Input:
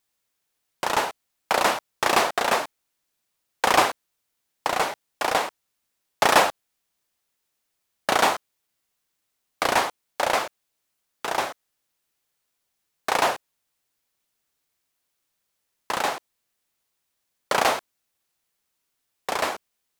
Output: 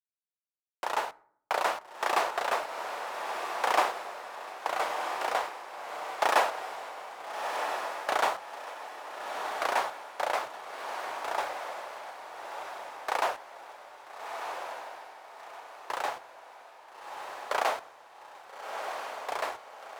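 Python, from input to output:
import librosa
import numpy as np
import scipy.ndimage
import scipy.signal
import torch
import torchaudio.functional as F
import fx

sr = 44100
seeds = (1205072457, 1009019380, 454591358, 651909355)

y = scipy.signal.sosfilt(scipy.signal.butter(2, 530.0, 'highpass', fs=sr, output='sos'), x)
y = fx.high_shelf(y, sr, hz=2200.0, db=-9.0)
y = np.sign(y) * np.maximum(np.abs(y) - 10.0 ** (-46.5 / 20.0), 0.0)
y = fx.echo_diffused(y, sr, ms=1331, feedback_pct=43, wet_db=-5)
y = fx.rev_fdn(y, sr, rt60_s=0.63, lf_ratio=1.4, hf_ratio=0.55, size_ms=48.0, drr_db=17.0)
y = F.gain(torch.from_numpy(y), -4.0).numpy()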